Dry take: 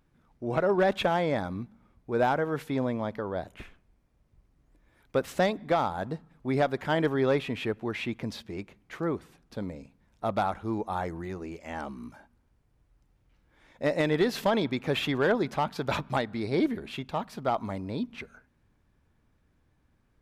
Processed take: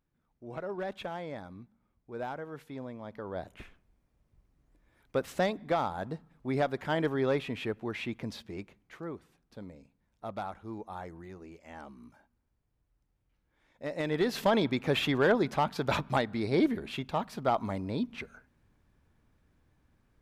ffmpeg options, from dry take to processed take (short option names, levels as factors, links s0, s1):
-af "volume=2.11,afade=t=in:st=3.02:d=0.43:silence=0.354813,afade=t=out:st=8.61:d=0.42:silence=0.473151,afade=t=in:st=13.89:d=0.64:silence=0.316228"